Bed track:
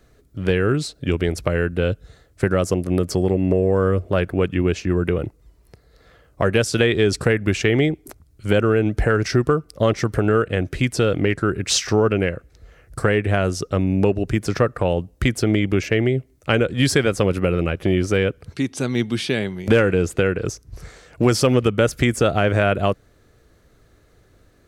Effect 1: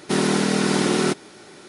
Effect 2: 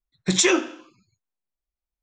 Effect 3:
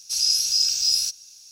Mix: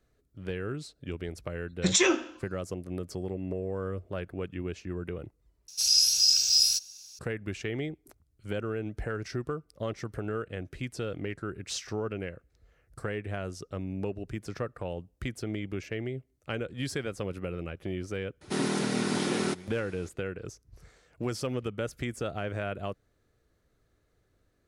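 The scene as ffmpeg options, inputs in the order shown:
-filter_complex "[0:a]volume=-16dB,asplit=2[a][b];[a]atrim=end=5.684[c];[3:a]atrim=end=1.51,asetpts=PTS-STARTPTS,volume=-1.5dB[d];[b]atrim=start=7.186[e];[2:a]atrim=end=2.02,asetpts=PTS-STARTPTS,volume=-4.5dB,afade=t=in:d=0.004:c=hsin,afade=t=out:st=2.016:d=0.004:c=hsin,adelay=1560[f];[1:a]atrim=end=1.68,asetpts=PTS-STARTPTS,volume=-9.5dB,afade=t=in:d=0.004:c=hsin,afade=t=out:st=1.676:d=0.004:c=hsin,adelay=18410[g];[c][d]acrossfade=d=0.004:c1=hsin:c2=hsin[h];[h][e]acrossfade=d=0.004:c1=hsin:c2=hsin[i];[i][f][g]amix=inputs=3:normalize=0"

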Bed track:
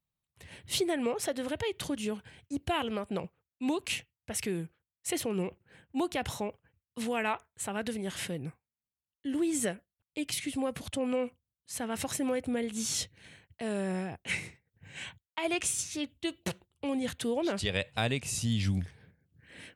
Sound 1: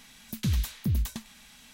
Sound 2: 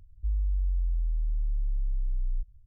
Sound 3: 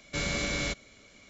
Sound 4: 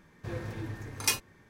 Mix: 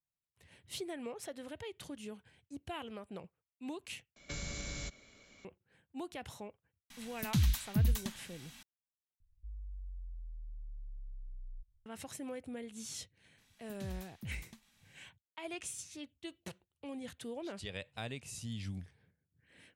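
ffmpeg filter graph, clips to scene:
-filter_complex "[1:a]asplit=2[a][b];[0:a]volume=-12dB[c];[3:a]acrossover=split=140|5500[d][e][f];[e]acompressor=threshold=-46dB:ratio=6:attack=86:release=76:knee=2.83:detection=peak[g];[d][g][f]amix=inputs=3:normalize=0[h];[a]equalizer=f=460:t=o:w=0.41:g=-14[i];[c]asplit=3[j][k][l];[j]atrim=end=4.164[m];[h]atrim=end=1.29,asetpts=PTS-STARTPTS,volume=-5.5dB[n];[k]atrim=start=5.446:end=9.204[o];[2:a]atrim=end=2.66,asetpts=PTS-STARTPTS,volume=-18dB[p];[l]atrim=start=11.856[q];[i]atrim=end=1.73,asetpts=PTS-STARTPTS,volume=-2dB,afade=t=in:d=0.004:c=hsin,afade=t=out:st=1.726:d=0.004:c=hsin,adelay=304290S[r];[b]atrim=end=1.73,asetpts=PTS-STARTPTS,volume=-17.5dB,afade=t=in:d=0.02,afade=t=out:st=1.71:d=0.02,adelay=13370[s];[m][n]acrossfade=d=0.004:c1=hsin:c2=hsin[t];[t][o]acrossfade=d=0.004:c1=hsin:c2=hsin[u];[u][p]acrossfade=d=0.004:c1=hsin:c2=hsin[v];[v][q]acrossfade=d=0.004:c1=hsin:c2=hsin[w];[w][r][s]amix=inputs=3:normalize=0"

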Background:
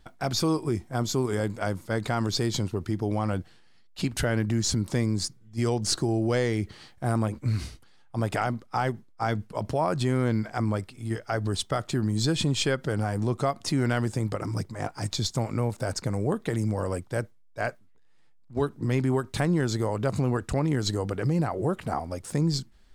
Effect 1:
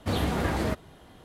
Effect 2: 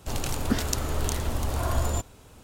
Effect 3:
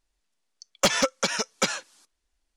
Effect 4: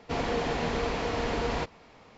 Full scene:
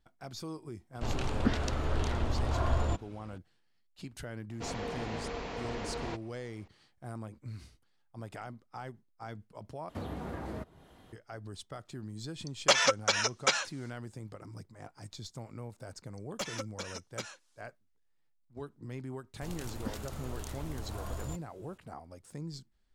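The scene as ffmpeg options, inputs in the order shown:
-filter_complex "[2:a]asplit=2[a][b];[3:a]asplit=2[c][d];[0:a]volume=-16.5dB[e];[a]lowpass=3.6k[f];[1:a]acrossover=split=150|1500[g][h][i];[g]acompressor=threshold=-37dB:ratio=4[j];[h]acompressor=threshold=-33dB:ratio=4[k];[i]acompressor=threshold=-54dB:ratio=4[l];[j][k][l]amix=inputs=3:normalize=0[m];[c]highpass=480,lowpass=6.9k[n];[b]alimiter=limit=-12.5dB:level=0:latency=1:release=27[o];[e]asplit=2[p][q];[p]atrim=end=9.894[r];[m]atrim=end=1.24,asetpts=PTS-STARTPTS,volume=-6dB[s];[q]atrim=start=11.126[t];[f]atrim=end=2.43,asetpts=PTS-STARTPTS,volume=-3dB,afade=t=in:d=0.004:c=hsin,afade=t=out:st=2.426:d=0.004:c=hsin,adelay=950[u];[4:a]atrim=end=2.17,asetpts=PTS-STARTPTS,volume=-9dB,afade=t=in:d=0.004:c=hsin,afade=t=out:st=2.166:d=0.004:c=hsin,adelay=4510[v];[n]atrim=end=2.56,asetpts=PTS-STARTPTS,volume=-1dB,afade=t=in:d=0.004:c=hsin,afade=t=out:st=2.556:d=0.004:c=hsin,adelay=11850[w];[d]atrim=end=2.56,asetpts=PTS-STARTPTS,volume=-16.5dB,afade=t=in:d=0.004:c=hsin,afade=t=out:st=2.556:d=0.004:c=hsin,adelay=686196S[x];[o]atrim=end=2.43,asetpts=PTS-STARTPTS,volume=-13.5dB,afade=t=in:d=0.004:c=hsin,afade=t=out:st=2.426:d=0.004:c=hsin,adelay=19350[y];[r][s]acrossfade=d=0.004:c1=hsin:c2=hsin[z];[z][t]acrossfade=d=0.004:c1=hsin:c2=hsin[aa];[aa][u][v][w][x][y]amix=inputs=6:normalize=0"

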